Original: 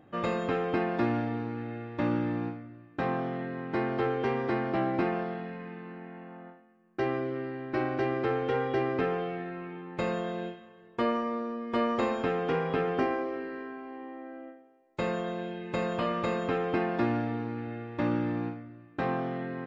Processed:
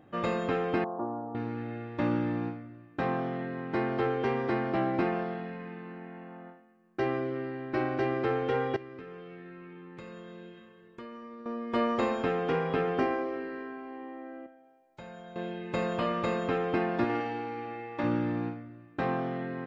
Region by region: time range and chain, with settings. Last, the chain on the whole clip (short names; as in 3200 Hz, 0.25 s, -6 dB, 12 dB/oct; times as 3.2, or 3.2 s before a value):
0.84–1.35 steep low-pass 1100 Hz 48 dB/oct + tilt +4.5 dB/oct
8.76–11.46 bell 730 Hz -11.5 dB 0.49 oct + compressor 4:1, threshold -44 dBFS
14.46–15.36 comb 1.3 ms, depth 52% + compressor 2:1, threshold -55 dBFS
17.04–18.04 HPF 300 Hz 6 dB/oct + flutter echo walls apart 9.2 m, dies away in 0.95 s
whole clip: dry